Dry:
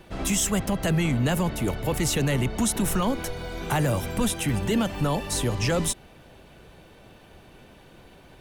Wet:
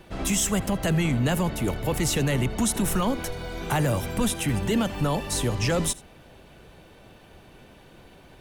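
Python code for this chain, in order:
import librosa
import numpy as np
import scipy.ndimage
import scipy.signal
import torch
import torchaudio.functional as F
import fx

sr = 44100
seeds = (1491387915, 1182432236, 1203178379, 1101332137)

y = x + 10.0 ** (-21.5 / 20.0) * np.pad(x, (int(81 * sr / 1000.0), 0))[:len(x)]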